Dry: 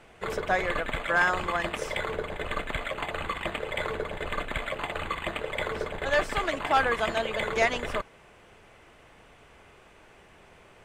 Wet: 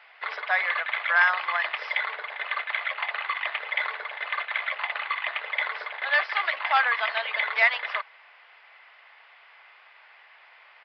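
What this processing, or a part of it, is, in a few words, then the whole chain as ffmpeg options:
musical greeting card: -af "aresample=11025,aresample=44100,highpass=f=790:w=0.5412,highpass=f=790:w=1.3066,equalizer=f=2k:t=o:w=0.46:g=6.5,volume=2dB"

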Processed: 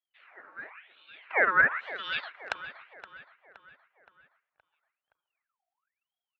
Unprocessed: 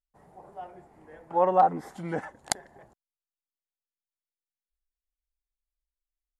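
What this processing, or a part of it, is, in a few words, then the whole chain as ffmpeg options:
voice changer toy: -filter_complex "[0:a]asplit=3[a][b][c];[a]afade=t=out:st=0.69:d=0.02[d];[b]lowpass=f=1.1k:w=0.5412,lowpass=f=1.1k:w=1.3066,afade=t=in:st=0.69:d=0.02,afade=t=out:st=1.21:d=0.02[e];[c]afade=t=in:st=1.21:d=0.02[f];[d][e][f]amix=inputs=3:normalize=0,aeval=exprs='val(0)*sin(2*PI*2000*n/s+2000*0.65/0.97*sin(2*PI*0.97*n/s))':c=same,highpass=530,equalizer=f=640:t=q:w=4:g=3,equalizer=f=1.4k:t=q:w=4:g=3,equalizer=f=3.2k:t=q:w=4:g=-6,lowpass=f=3.7k:w=0.5412,lowpass=f=3.7k:w=1.3066,asplit=2[g][h];[h]adelay=520,lowpass=f=3.5k:p=1,volume=-14dB,asplit=2[i][j];[j]adelay=520,lowpass=f=3.5k:p=1,volume=0.51,asplit=2[k][l];[l]adelay=520,lowpass=f=3.5k:p=1,volume=0.51,asplit=2[m][n];[n]adelay=520,lowpass=f=3.5k:p=1,volume=0.51,asplit=2[o][p];[p]adelay=520,lowpass=f=3.5k:p=1,volume=0.51[q];[g][i][k][m][o][q]amix=inputs=6:normalize=0,asubboost=boost=12:cutoff=81,volume=2.5dB"

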